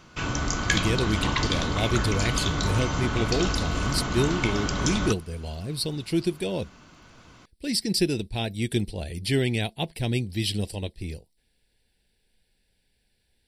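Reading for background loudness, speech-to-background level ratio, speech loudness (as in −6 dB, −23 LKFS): −27.0 LKFS, −1.5 dB, −28.5 LKFS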